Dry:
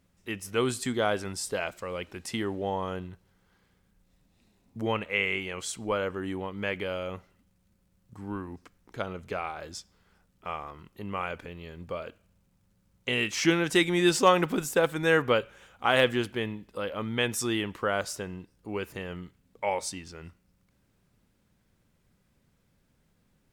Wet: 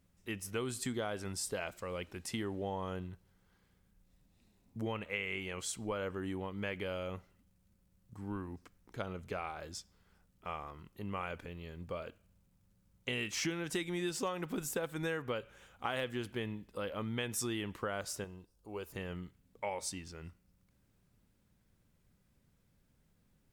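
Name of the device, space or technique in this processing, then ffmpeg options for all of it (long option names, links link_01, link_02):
ASMR close-microphone chain: -filter_complex "[0:a]asettb=1/sr,asplit=3[link_01][link_02][link_03];[link_01]atrim=end=18.244[link_04];[link_02]atrim=start=18.24:end=18.93,asetpts=PTS-STARTPTS,afade=type=in:duration=0.004:curve=qsin,afade=type=out:start_time=0.686:duration=0.004:curve=qsin,equalizer=frequency=125:width_type=o:width=1:gain=-9,equalizer=frequency=250:width_type=o:width=1:gain=-8,equalizer=frequency=2000:width_type=o:width=1:gain=-11[link_05];[link_03]atrim=start=18.926[link_06];[link_04][link_05]acrossfade=duration=0.004:curve1=hsin:curve2=qsin[link_07];[link_07][link_06]acrossfade=duration=0.004:curve1=qsin:curve2=hsin,lowshelf=frequency=180:gain=5,acompressor=threshold=-27dB:ratio=8,highshelf=frequency=8100:gain=5,volume=-6dB"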